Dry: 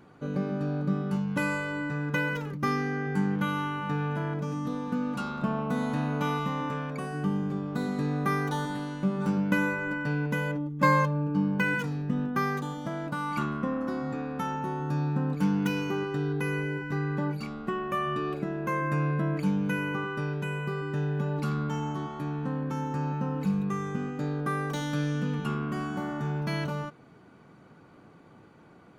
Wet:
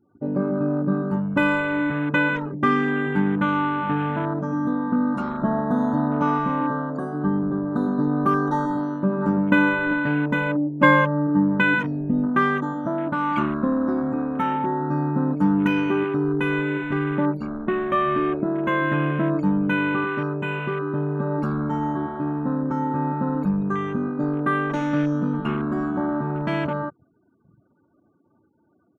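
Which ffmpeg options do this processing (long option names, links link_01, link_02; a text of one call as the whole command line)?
ffmpeg -i in.wav -filter_complex "[0:a]asettb=1/sr,asplit=3[link_01][link_02][link_03];[link_01]atrim=end=4.964[link_04];[link_02]atrim=start=4.96:end=8.8,asetpts=PTS-STARTPTS,afade=type=in:duration=0.004:curve=qsin,afade=type=out:start_time=3.836:duration=0.004:curve=qsin,asuperstop=centerf=2100:order=8:qfactor=1.4[link_05];[link_03]atrim=start=8.796[link_06];[link_04][link_05]acrossfade=duration=0.004:curve1=hsin:curve2=qsin[link_07];[link_07][link_06]acrossfade=duration=0.004:curve1=qsin:curve2=hsin,afftfilt=real='re*gte(hypot(re,im),0.00398)':imag='im*gte(hypot(re,im),0.00398)':win_size=1024:overlap=0.75,afwtdn=0.0126,aecho=1:1:3.2:0.48,volume=7.5dB" out.wav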